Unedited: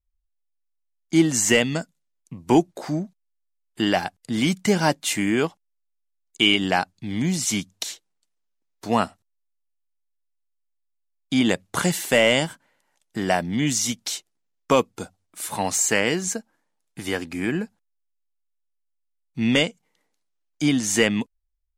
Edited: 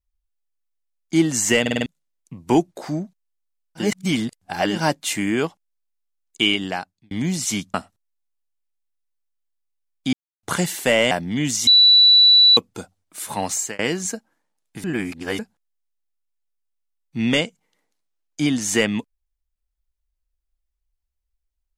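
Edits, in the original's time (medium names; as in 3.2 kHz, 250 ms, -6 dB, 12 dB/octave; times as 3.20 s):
1.61 s: stutter in place 0.05 s, 5 plays
3.83–4.75 s: reverse, crossfade 0.16 s
6.41–7.11 s: fade out
7.74–9.00 s: delete
11.39–11.69 s: mute
12.37–13.33 s: delete
13.89–14.79 s: bleep 3.95 kHz -8.5 dBFS
15.62–16.01 s: fade out equal-power
17.06–17.61 s: reverse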